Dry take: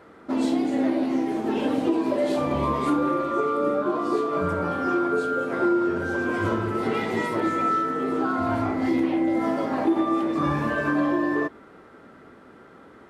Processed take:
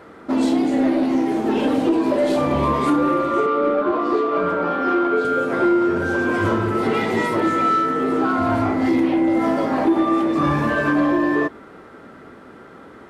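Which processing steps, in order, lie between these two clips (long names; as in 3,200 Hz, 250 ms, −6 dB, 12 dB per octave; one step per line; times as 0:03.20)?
0:03.46–0:05.25: three-way crossover with the lows and the highs turned down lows −22 dB, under 190 Hz, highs −17 dB, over 4,600 Hz
in parallel at +1 dB: soft clipping −21 dBFS, distortion −14 dB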